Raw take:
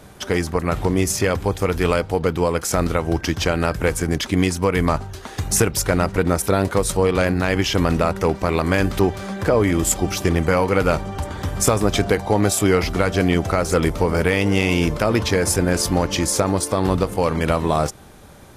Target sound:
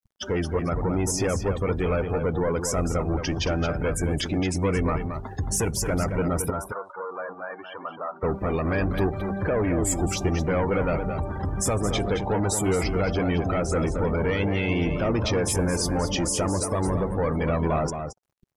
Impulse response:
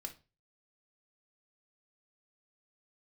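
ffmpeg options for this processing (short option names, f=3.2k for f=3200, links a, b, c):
-filter_complex "[0:a]acrusher=bits=5:mix=0:aa=0.000001,asoftclip=type=tanh:threshold=-20.5dB,asettb=1/sr,asplit=3[a][b][c];[a]atrim=end=6.504[d];[b]atrim=start=6.5:end=8.23,asetpts=PTS-STARTPTS,afade=t=in:d=0.004:c=qsin,afade=t=out:st=1.726:d=0.004:c=qsin,bandpass=f=1.1k:t=q:w=1.6:csg=0[e];[c]atrim=start=8.226[f];[d][e]acrossfade=d=0.004:c1=hsin:c2=qsin[g];[g][f]acrossfade=d=0.004:c1=qsin:c2=hsin,afftdn=nr=35:nf=-32,asplit=2[h][i];[i]adelay=221.6,volume=-7dB,highshelf=f=4k:g=-4.99[j];[h][j]amix=inputs=2:normalize=0"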